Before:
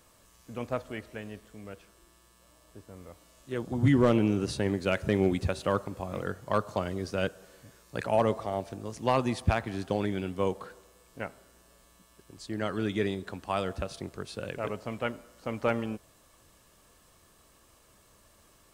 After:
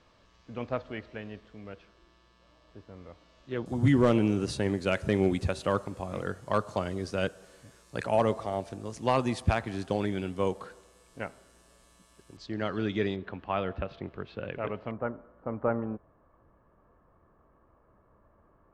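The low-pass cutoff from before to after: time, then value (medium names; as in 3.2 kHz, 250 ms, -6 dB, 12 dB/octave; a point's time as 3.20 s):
low-pass 24 dB/octave
4.8 kHz
from 3.66 s 11 kHz
from 12.37 s 5.3 kHz
from 13.16 s 3.1 kHz
from 14.91 s 1.4 kHz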